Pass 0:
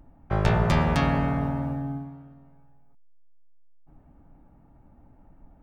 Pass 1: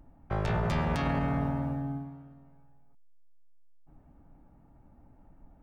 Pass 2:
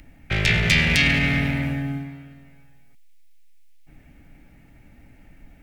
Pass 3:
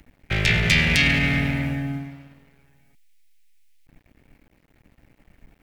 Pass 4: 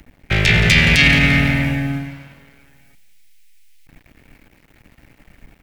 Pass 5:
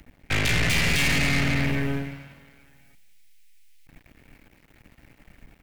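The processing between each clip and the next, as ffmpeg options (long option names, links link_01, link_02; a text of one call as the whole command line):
ffmpeg -i in.wav -af "alimiter=limit=-17.5dB:level=0:latency=1:release=17,volume=-3dB" out.wav
ffmpeg -i in.wav -filter_complex "[0:a]acrossover=split=360|2700[link_01][link_02][link_03];[link_02]asoftclip=type=tanh:threshold=-37dB[link_04];[link_01][link_04][link_03]amix=inputs=3:normalize=0,highshelf=frequency=1500:width_type=q:width=3:gain=12.5,volume=7.5dB" out.wav
ffmpeg -i in.wav -af "aeval=exprs='sgn(val(0))*max(abs(val(0))-0.00335,0)':channel_layout=same" out.wav
ffmpeg -i in.wav -filter_complex "[0:a]aecho=1:1:172|344|516|688:0.158|0.0697|0.0307|0.0135,acrossover=split=1100[link_01][link_02];[link_02]dynaudnorm=framelen=250:gausssize=9:maxgain=5dB[link_03];[link_01][link_03]amix=inputs=2:normalize=0,alimiter=level_in=7.5dB:limit=-1dB:release=50:level=0:latency=1,volume=-1dB" out.wav
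ffmpeg -i in.wav -af "aeval=exprs='(tanh(11.2*val(0)+0.75)-tanh(0.75))/11.2':channel_layout=same" out.wav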